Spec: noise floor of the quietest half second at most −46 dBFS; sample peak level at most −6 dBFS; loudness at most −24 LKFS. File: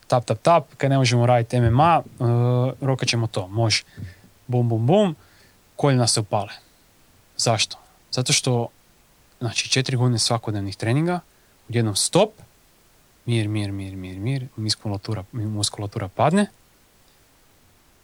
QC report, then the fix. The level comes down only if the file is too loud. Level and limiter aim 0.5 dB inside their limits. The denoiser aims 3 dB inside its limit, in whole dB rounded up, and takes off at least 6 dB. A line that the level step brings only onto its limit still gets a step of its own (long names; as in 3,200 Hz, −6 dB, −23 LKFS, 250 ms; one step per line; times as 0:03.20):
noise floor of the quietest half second −56 dBFS: in spec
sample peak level −5.0 dBFS: out of spec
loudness −21.5 LKFS: out of spec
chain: level −3 dB